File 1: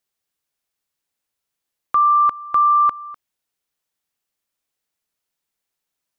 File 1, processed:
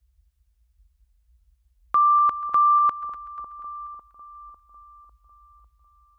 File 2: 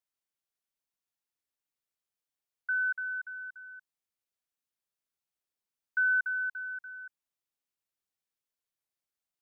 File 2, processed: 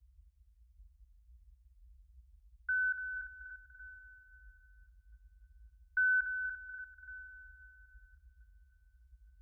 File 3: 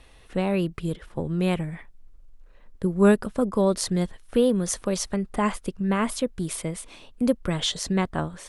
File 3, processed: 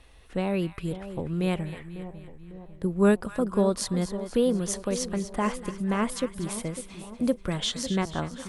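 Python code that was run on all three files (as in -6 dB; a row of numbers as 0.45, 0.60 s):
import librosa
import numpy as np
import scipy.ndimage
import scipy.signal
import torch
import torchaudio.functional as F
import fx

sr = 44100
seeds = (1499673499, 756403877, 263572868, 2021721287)

y = fx.echo_split(x, sr, split_hz=1000.0, low_ms=550, high_ms=243, feedback_pct=52, wet_db=-12.0)
y = fx.dmg_noise_band(y, sr, seeds[0], low_hz=38.0, high_hz=68.0, level_db=-58.0)
y = y * librosa.db_to_amplitude(-3.0)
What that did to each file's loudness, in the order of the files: -4.0, -4.5, -2.5 LU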